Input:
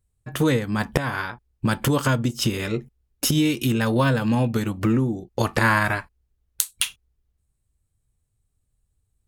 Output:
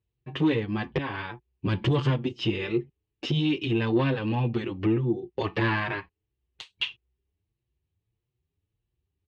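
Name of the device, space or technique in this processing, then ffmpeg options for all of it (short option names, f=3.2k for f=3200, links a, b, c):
barber-pole flanger into a guitar amplifier: -filter_complex "[0:a]asettb=1/sr,asplit=3[a][b][c];[a]atrim=end=1.664[d];[b]atrim=start=1.66:end=2.1,asetpts=PTS-STARTPTS,afade=t=in:d=0.004:c=qsin,afade=t=out:st=0.436:d=0.004:c=qsin,bass=f=250:g=8,treble=f=4k:g=6[e];[c]atrim=start=2.096[f];[d][e]acrossfade=d=0.004:c1=hsin:c2=qsin[g];[g][f]acrossfade=d=0.004:c1=qsin:c2=hsin,asplit=2[h][i];[i]adelay=6.6,afreqshift=1.6[j];[h][j]amix=inputs=2:normalize=1,asoftclip=type=tanh:threshold=-17dB,highpass=82,equalizer=f=230:t=q:w=4:g=-5,equalizer=f=360:t=q:w=4:g=9,equalizer=f=620:t=q:w=4:g=-6,equalizer=f=1.4k:t=q:w=4:g=-9,equalizer=f=2.8k:t=q:w=4:g=5,lowpass=f=3.7k:w=0.5412,lowpass=f=3.7k:w=1.3066"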